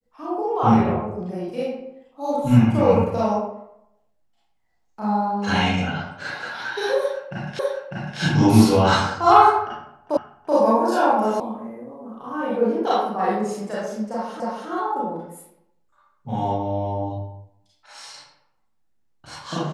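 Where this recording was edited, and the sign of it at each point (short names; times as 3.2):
7.59 repeat of the last 0.6 s
10.17 repeat of the last 0.38 s
11.4 sound cut off
14.4 repeat of the last 0.28 s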